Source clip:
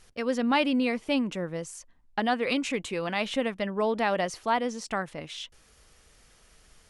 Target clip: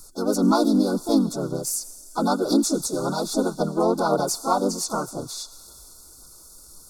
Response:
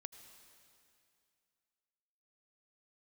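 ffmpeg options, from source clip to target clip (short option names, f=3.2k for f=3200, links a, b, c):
-filter_complex "[0:a]acrossover=split=120[a][b];[b]crystalizer=i=1:c=0[c];[a][c]amix=inputs=2:normalize=0,asplit=4[d][e][f][g];[e]asetrate=35002,aresample=44100,atempo=1.25992,volume=-1dB[h];[f]asetrate=52444,aresample=44100,atempo=0.840896,volume=-4dB[i];[g]asetrate=66075,aresample=44100,atempo=0.66742,volume=-15dB[j];[d][h][i][j]amix=inputs=4:normalize=0,asplit=2[k][l];[l]aderivative[m];[1:a]atrim=start_sample=2205[n];[m][n]afir=irnorm=-1:irlink=0,volume=9dB[o];[k][o]amix=inputs=2:normalize=0,afftfilt=real='re*(1-between(b*sr/4096,1500,3400))':imag='im*(1-between(b*sr/4096,1500,3400))':win_size=4096:overlap=0.75,aphaser=in_gain=1:out_gain=1:delay=4.6:decay=0.31:speed=1.9:type=sinusoidal,superequalizer=6b=1.78:13b=0.398"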